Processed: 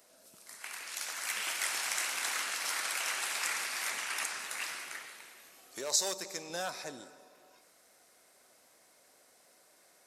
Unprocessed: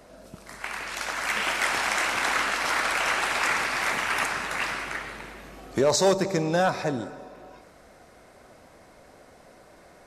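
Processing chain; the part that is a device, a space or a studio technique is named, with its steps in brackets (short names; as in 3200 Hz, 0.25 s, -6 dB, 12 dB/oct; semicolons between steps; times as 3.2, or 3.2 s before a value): pre-emphasis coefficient 0.9; filter by subtraction (in parallel: LPF 370 Hz 12 dB/oct + phase invert); 3.9–4.39 on the sum: LPF 11000 Hz 12 dB/oct; 5.06–6.5 low shelf 410 Hz -6 dB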